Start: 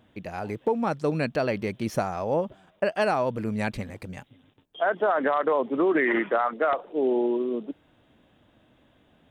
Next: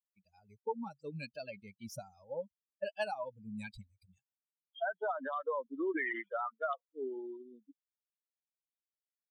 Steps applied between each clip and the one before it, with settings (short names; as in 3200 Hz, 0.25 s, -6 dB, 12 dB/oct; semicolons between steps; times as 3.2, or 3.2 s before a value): per-bin expansion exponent 3; low shelf 390 Hz -7 dB; gain -5 dB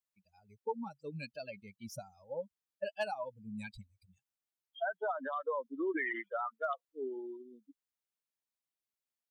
hard clip -25 dBFS, distortion -41 dB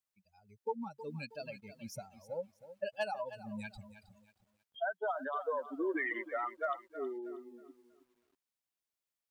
lo-fi delay 0.318 s, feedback 35%, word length 11-bit, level -13.5 dB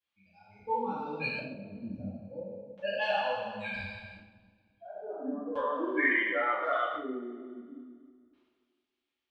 spectral trails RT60 1.45 s; LFO low-pass square 0.36 Hz 300–3200 Hz; two-slope reverb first 0.47 s, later 2.1 s, from -22 dB, DRR -9 dB; gain -6.5 dB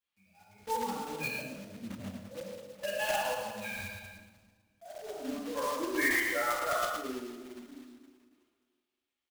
block floating point 3-bit; on a send: echo 0.109 s -10 dB; on the sum: gain -2.5 dB